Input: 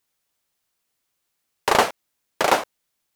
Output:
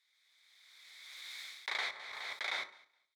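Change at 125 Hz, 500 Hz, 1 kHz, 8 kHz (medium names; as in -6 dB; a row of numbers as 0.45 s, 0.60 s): under -35 dB, -29.5 dB, -24.5 dB, -21.0 dB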